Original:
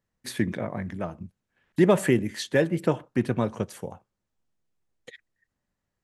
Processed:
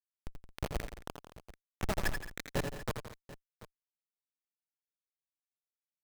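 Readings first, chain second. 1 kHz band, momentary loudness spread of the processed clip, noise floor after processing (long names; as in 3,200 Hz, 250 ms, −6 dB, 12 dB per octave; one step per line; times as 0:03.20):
−9.5 dB, 20 LU, below −85 dBFS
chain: sub-octave generator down 2 octaves, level −1 dB
in parallel at +0.5 dB: compressor whose output falls as the input rises −27 dBFS, ratio −0.5
on the sum: soft clipping −9 dBFS, distortion −21 dB
harmonic generator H 2 −31 dB, 3 −14 dB, 4 −29 dB, 5 −30 dB, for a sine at −10 dBFS
auto-filter band-pass sine 8.9 Hz 910–2,300 Hz
harmonic generator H 4 −18 dB, 8 −37 dB, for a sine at −18 dBFS
comparator with hysteresis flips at −31.5 dBFS
on a send: multi-tap delay 82/89/171/221/737 ms −7.5/−13/−13/−17/−17.5 dB
on the sum: level +12.5 dB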